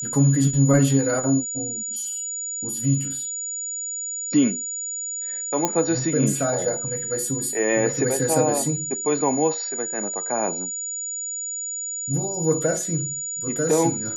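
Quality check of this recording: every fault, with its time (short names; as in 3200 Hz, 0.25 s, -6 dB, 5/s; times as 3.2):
tone 6900 Hz -27 dBFS
5.65 pop -5 dBFS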